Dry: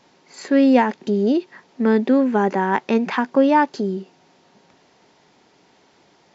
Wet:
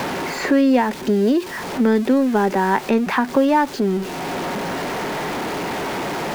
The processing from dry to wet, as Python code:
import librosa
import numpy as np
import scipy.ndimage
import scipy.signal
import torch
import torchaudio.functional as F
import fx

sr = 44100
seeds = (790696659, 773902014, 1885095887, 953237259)

y = x + 0.5 * 10.0 ** (-29.0 / 20.0) * np.sign(x)
y = fx.band_squash(y, sr, depth_pct=70)